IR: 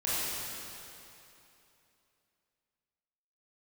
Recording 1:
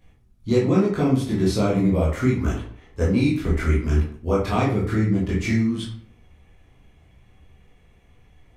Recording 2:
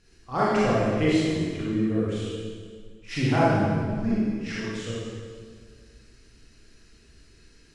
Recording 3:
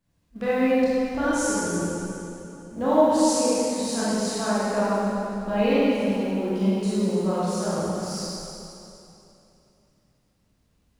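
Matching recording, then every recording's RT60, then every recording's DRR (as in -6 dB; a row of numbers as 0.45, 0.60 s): 3; 0.55, 1.8, 2.9 s; -7.5, -8.5, -10.5 dB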